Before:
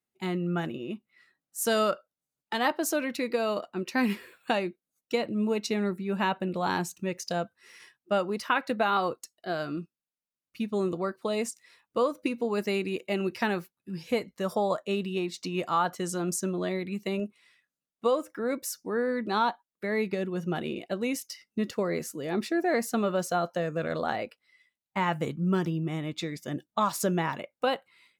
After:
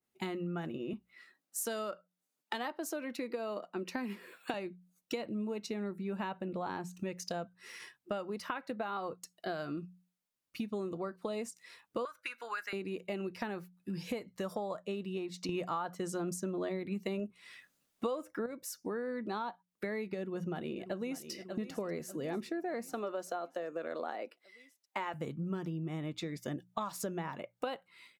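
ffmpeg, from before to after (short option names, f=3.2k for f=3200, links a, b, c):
-filter_complex "[0:a]asettb=1/sr,asplit=3[a][b][c];[a]atrim=end=0.934[d];[b]atrim=start=0.93:end=4.54,asetpts=PTS-STARTPTS,afade=t=in:d=0.004:c=qsin,afade=t=out:st=3.606:d=0.004:c=qsin,highpass=f=190:w=0.5412,highpass=f=190:w=1.3066[e];[c]atrim=start=4.536[f];[d][e]acrossfade=d=0.004:c1=hsin:c2=qsin[g];[g][f]acrossfade=d=0.004:c1=qsin:c2=hsin,asettb=1/sr,asplit=3[h][i][j];[h]atrim=end=6.484[k];[i]atrim=start=6.48:end=6.93,asetpts=PTS-STARTPTS,afade=t=in:d=0.004:c=qsin,afade=t=out:st=0.446:d=0.004:c=qsin,highshelf=f=4.3k:g=-6.5[l];[j]atrim=start=6.926[m];[k][l]acrossfade=d=0.004:c1=hsin:c2=qsin[n];[n][m]acrossfade=d=0.004:c1=qsin:c2=hsin,asettb=1/sr,asplit=3[o][p][q];[o]atrim=end=12.054[r];[p]atrim=start=12.05:end=12.73,asetpts=PTS-STARTPTS,afade=t=in:d=0.004:c=qsin,afade=t=out:st=0.676:d=0.004:c=qsin,highpass=f=1.5k:t=q:w=6[s];[q]atrim=start=12.726[t];[r][s]acrossfade=d=0.004:c1=hsin:c2=qsin[u];[u][t]acrossfade=d=0.004:c1=qsin:c2=hsin,asplit=2[v][w];[w]afade=t=in:st=20.2:d=0.01,afade=t=out:st=21.31:d=0.01,aecho=0:1:590|1180|1770|2360|2950|3540:0.188365|0.113019|0.0678114|0.0406868|0.0244121|0.0146473[x];[v][x]amix=inputs=2:normalize=0,asettb=1/sr,asplit=3[y][z][aa];[y]atrim=end=22.934[ab];[z]atrim=start=22.93:end=25.14,asetpts=PTS-STARTPTS,afade=t=in:d=0.004:c=qsin,afade=t=out:st=2.206:d=0.004:c=qsin,highpass=f=270:w=0.5412,highpass=f=270:w=1.3066[ac];[aa]atrim=start=25.136[ad];[ab][ac]acrossfade=d=0.004:c1=hsin:c2=qsin[ae];[ae][ad]acrossfade=d=0.004:c1=qsin:c2=hsin,asplit=3[af][ag][ah];[af]atrim=end=15.492[ai];[ag]atrim=start=15.488:end=18.462,asetpts=PTS-STARTPTS,volume=11dB[aj];[ah]atrim=start=18.458[ak];[ai][aj]acrossfade=d=0.004:c1=hsin:c2=hsin[al];[al][ak]acrossfade=d=0.004:c1=hsin:c2=hsin,bandreject=f=60:t=h:w=6,bandreject=f=120:t=h:w=6,bandreject=f=180:t=h:w=6,acompressor=threshold=-39dB:ratio=6,adynamicequalizer=threshold=0.00158:dfrequency=1700:dqfactor=0.7:tfrequency=1700:tqfactor=0.7:attack=5:release=100:ratio=0.375:range=3:mode=cutabove:tftype=highshelf,volume=3.5dB"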